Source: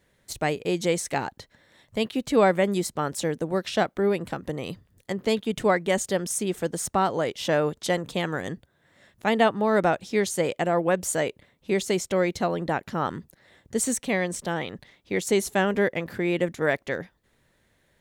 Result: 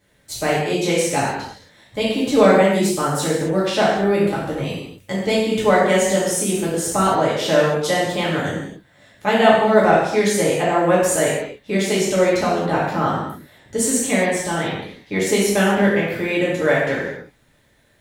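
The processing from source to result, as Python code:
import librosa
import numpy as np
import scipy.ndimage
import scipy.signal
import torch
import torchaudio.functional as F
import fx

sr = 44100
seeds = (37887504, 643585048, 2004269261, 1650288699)

y = fx.rev_gated(x, sr, seeds[0], gate_ms=300, shape='falling', drr_db=-7.0)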